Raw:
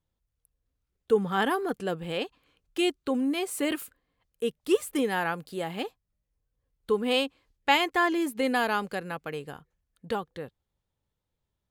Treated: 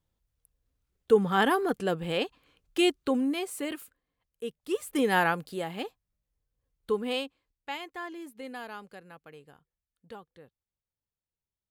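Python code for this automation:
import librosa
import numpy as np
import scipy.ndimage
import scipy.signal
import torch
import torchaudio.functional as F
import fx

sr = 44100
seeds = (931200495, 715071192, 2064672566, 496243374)

y = fx.gain(x, sr, db=fx.line((3.04, 2.0), (3.75, -7.0), (4.73, -7.0), (5.17, 5.0), (5.71, -2.5), (6.94, -2.5), (7.69, -14.5)))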